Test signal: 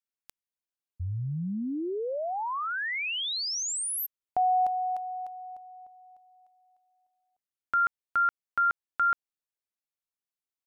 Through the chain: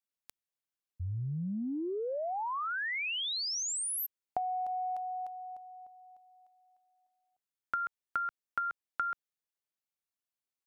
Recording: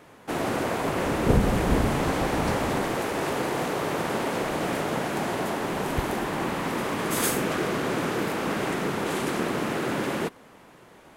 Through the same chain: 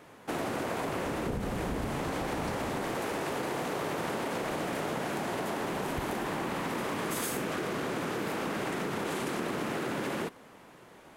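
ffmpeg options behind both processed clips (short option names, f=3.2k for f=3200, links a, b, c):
-af "lowshelf=f=72:g=-4,acompressor=threshold=-34dB:ratio=10:attack=46:release=40:knee=1:detection=peak,volume=-2dB"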